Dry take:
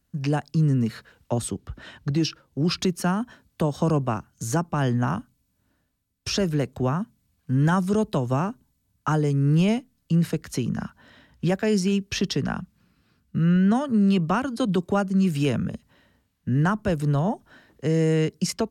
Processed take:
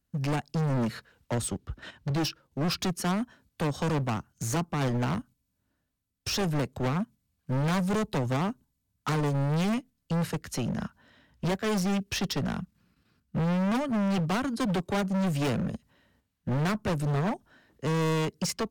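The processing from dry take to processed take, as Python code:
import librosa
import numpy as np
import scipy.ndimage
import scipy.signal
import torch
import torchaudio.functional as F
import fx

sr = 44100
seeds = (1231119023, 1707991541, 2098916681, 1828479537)

p1 = fx.level_steps(x, sr, step_db=22)
p2 = x + (p1 * librosa.db_to_amplitude(0.5))
p3 = np.clip(p2, -10.0 ** (-25.0 / 20.0), 10.0 ** (-25.0 / 20.0))
y = fx.upward_expand(p3, sr, threshold_db=-43.0, expansion=1.5)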